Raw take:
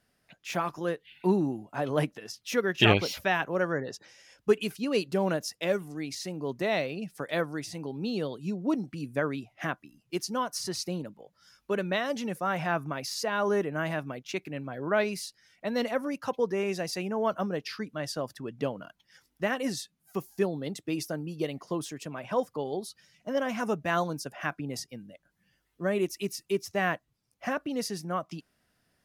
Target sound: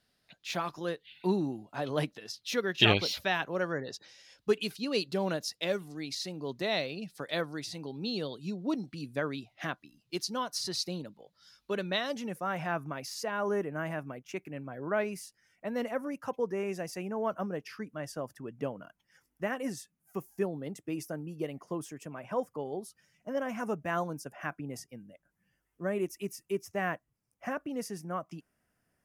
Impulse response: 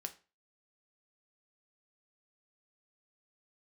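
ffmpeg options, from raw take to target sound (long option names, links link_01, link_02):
-af "asetnsamples=nb_out_samples=441:pad=0,asendcmd='12.14 equalizer g -4;13.31 equalizer g -13',equalizer=frequency=4000:width_type=o:width=0.67:gain=10,volume=-4dB"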